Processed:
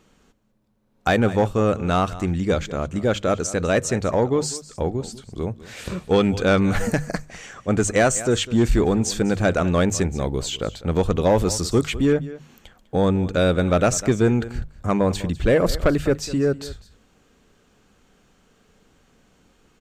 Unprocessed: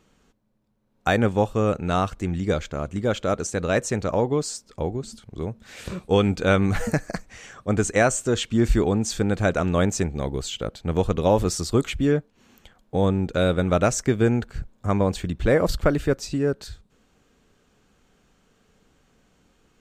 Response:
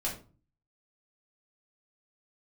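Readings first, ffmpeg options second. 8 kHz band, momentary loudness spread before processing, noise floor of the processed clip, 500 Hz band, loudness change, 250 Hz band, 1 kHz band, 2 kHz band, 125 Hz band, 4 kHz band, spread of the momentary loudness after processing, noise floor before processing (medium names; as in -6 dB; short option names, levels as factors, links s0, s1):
+3.5 dB, 12 LU, -60 dBFS, +2.0 dB, +2.0 dB, +2.5 dB, +1.5 dB, +1.5 dB, +1.5 dB, +3.0 dB, 12 LU, -64 dBFS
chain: -filter_complex "[0:a]bandreject=f=50:t=h:w=6,bandreject=f=100:t=h:w=6,bandreject=f=150:t=h:w=6,asplit=2[s0][s1];[s1]aecho=0:1:200:0.126[s2];[s0][s2]amix=inputs=2:normalize=0,asoftclip=type=tanh:threshold=0.251,volume=1.5"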